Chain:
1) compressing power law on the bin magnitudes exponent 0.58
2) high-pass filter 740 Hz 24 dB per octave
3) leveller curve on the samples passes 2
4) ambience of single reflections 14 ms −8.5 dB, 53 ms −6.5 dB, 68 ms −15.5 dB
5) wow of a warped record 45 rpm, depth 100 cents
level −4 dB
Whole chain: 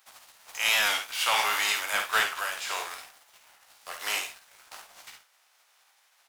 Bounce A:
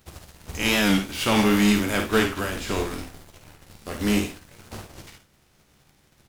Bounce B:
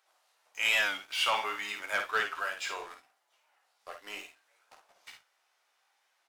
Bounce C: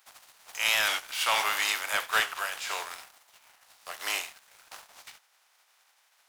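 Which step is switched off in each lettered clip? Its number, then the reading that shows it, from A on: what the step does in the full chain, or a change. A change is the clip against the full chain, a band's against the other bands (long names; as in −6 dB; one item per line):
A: 2, 250 Hz band +33.0 dB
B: 1, 8 kHz band −7.5 dB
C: 4, change in integrated loudness −1.0 LU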